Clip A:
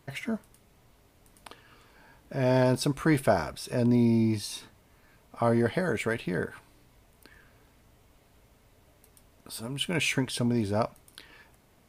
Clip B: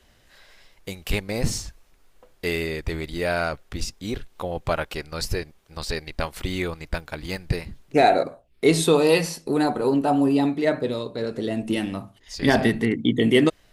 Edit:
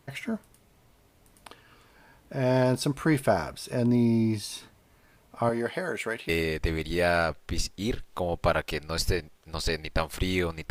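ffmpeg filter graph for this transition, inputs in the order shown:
-filter_complex "[0:a]asettb=1/sr,asplit=3[a][b][c];[a]atrim=end=5.494[d];[b]atrim=start=5.49:end=6.29,asetpts=PTS-STARTPTS,afade=t=in:d=0.004:c=qsin,afade=t=out:st=0.796:d=0.004:c=qsin,highpass=f=420:p=1[e];[c]atrim=start=6.286[f];[d][e]acrossfade=d=0.004:c1=hsin:c2=qsin[g];[g][f]acrossfade=d=0.004:c1=qsin:c2=hsin,apad=whole_dur=10.7,atrim=end=10.7,atrim=end=6.292[h];[1:a]atrim=start=2.518:end=6.93[i];[h][i]acrossfade=d=0.004:c1=hsin:c2=hsin"

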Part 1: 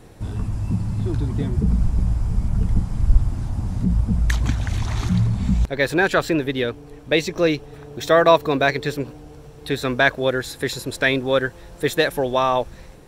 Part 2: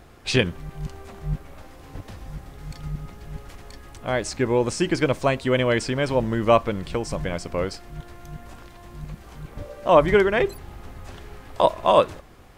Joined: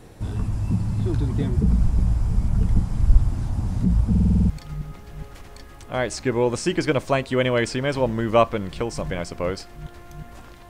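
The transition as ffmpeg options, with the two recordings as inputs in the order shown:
-filter_complex "[0:a]apad=whole_dur=10.69,atrim=end=10.69,asplit=8[a][b][c][d][e][f][g][h];[a]atrim=end=4.152[i];[b]atrim=start=4.098:end=4.152[j];[c]atrim=start=4.098:end=4.152[k];[d]atrim=start=4.098:end=4.152[l];[e]atrim=start=4.098:end=4.152[m];[f]atrim=start=4.098:end=4.152[n];[g]atrim=start=4.098:end=4.152[o];[h]atrim=start=4.098:end=4.152[p];[1:a]atrim=start=2.638:end=8.83[q];[i][j]acrossfade=d=0.004:c1=hsin:c2=hsin[r];[r][k]acrossfade=d=0.004:c1=hsin:c2=hsin[s];[s][l]acrossfade=d=0.004:c1=hsin:c2=hsin[t];[t][m]acrossfade=d=0.004:c1=hsin:c2=hsin[u];[u][n]acrossfade=d=0.004:c1=hsin:c2=hsin[v];[v][o]acrossfade=d=0.004:c1=hsin:c2=hsin[w];[w][p]acrossfade=d=0.004:c1=hsin:c2=hsin[x];[x][q]acrossfade=d=0.004:c1=hsin:c2=hsin"

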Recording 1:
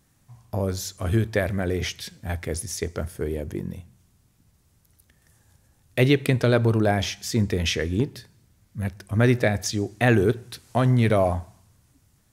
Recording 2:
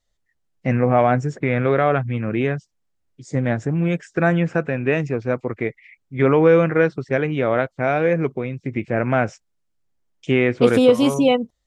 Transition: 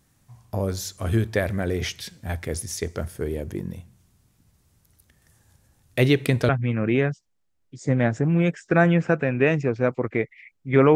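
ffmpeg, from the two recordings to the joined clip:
-filter_complex "[0:a]apad=whole_dur=10.95,atrim=end=10.95,atrim=end=6.492[a];[1:a]atrim=start=1.948:end=6.41[b];[a][b]acrossfade=d=0.004:c1=hsin:c2=hsin"

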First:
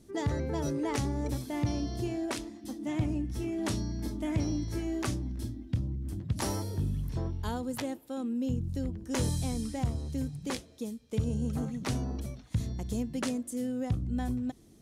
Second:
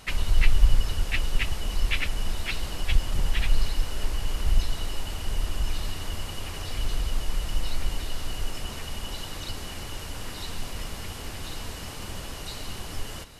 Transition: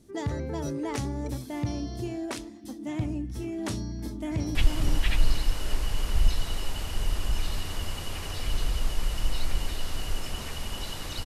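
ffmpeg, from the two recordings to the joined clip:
-filter_complex "[0:a]apad=whole_dur=11.25,atrim=end=11.25,atrim=end=4.552[a];[1:a]atrim=start=2.858:end=9.56[b];[a][b]acrossfade=d=0.004:c1=hsin:c2=hsin,asplit=2[c][d];[d]afade=t=in:st=3.87:d=0.01,afade=t=out:st=4.55:d=0.01,aecho=0:1:440|880|1320|1760:0.562341|0.196819|0.0688868|0.0241104[e];[c][e]amix=inputs=2:normalize=0"

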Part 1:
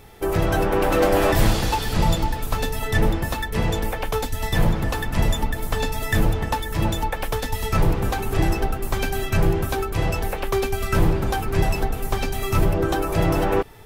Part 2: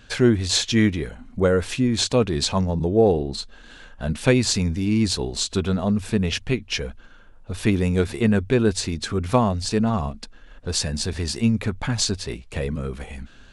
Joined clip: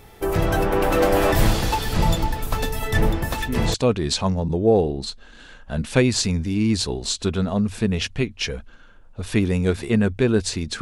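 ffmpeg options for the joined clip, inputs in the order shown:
-filter_complex "[1:a]asplit=2[a][b];[0:a]apad=whole_dur=10.81,atrim=end=10.81,atrim=end=3.742[c];[b]atrim=start=2.048:end=9.12[d];[a]atrim=start=1.61:end=2.05,asetpts=PTS-STARTPTS,volume=-7.5dB,afade=t=in:d=0.004:c=hsin,afade=t=out:st=0.436:d=0.004:c=hsin,adelay=3300[e];[c][d]acrossfade=d=0.004:c1=hsin:c2=hsin[f];[f][e]amix=inputs=2:normalize=0"

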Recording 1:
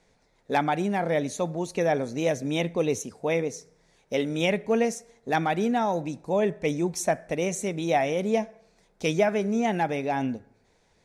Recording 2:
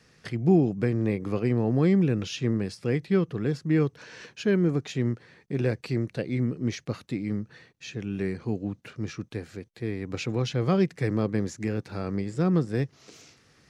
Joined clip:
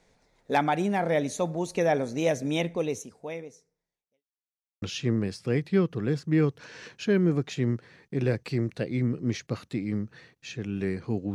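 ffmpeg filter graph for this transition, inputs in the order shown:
-filter_complex "[0:a]apad=whole_dur=11.34,atrim=end=11.34,asplit=2[a][b];[a]atrim=end=4.25,asetpts=PTS-STARTPTS,afade=t=out:st=2.51:d=1.74:c=qua[c];[b]atrim=start=4.25:end=4.82,asetpts=PTS-STARTPTS,volume=0[d];[1:a]atrim=start=2.2:end=8.72,asetpts=PTS-STARTPTS,afade=t=in:d=0.004:c=hsin[e];[c][d][e]concat=n=3:v=0:a=1"

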